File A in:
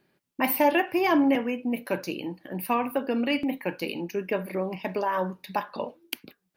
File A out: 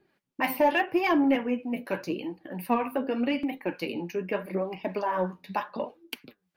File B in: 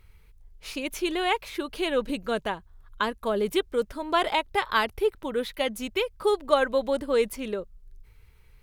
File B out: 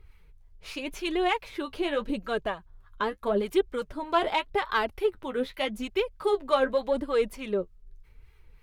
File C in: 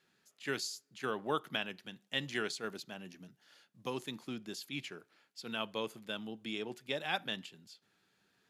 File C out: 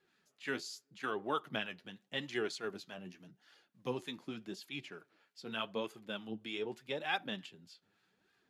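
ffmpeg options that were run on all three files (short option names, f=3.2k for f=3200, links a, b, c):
-filter_complex "[0:a]highshelf=f=5.3k:g=-8.5,flanger=delay=2.4:depth=9.5:regen=36:speed=0.84:shape=sinusoidal,acrossover=split=830[a][b];[a]aeval=exprs='val(0)*(1-0.5/2+0.5/2*cos(2*PI*3.3*n/s))':c=same[c];[b]aeval=exprs='val(0)*(1-0.5/2-0.5/2*cos(2*PI*3.3*n/s))':c=same[d];[c][d]amix=inputs=2:normalize=0,asplit=2[e][f];[f]asoftclip=type=tanh:threshold=-25dB,volume=-5.5dB[g];[e][g]amix=inputs=2:normalize=0,volume=2dB"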